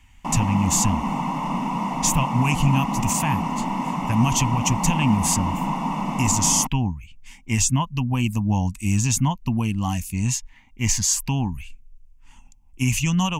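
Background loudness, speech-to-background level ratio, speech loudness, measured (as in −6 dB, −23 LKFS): −26.0 LKFS, 3.5 dB, −22.5 LKFS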